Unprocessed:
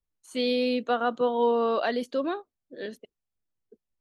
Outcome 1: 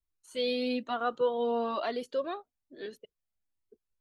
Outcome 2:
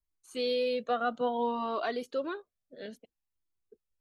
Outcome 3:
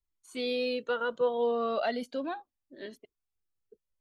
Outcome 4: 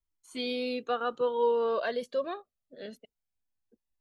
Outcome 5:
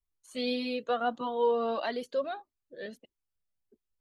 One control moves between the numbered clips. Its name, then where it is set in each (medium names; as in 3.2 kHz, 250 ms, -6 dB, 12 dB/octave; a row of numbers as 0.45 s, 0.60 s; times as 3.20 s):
Shepard-style flanger, rate: 1.1 Hz, 0.59 Hz, 0.35 Hz, 0.23 Hz, 1.6 Hz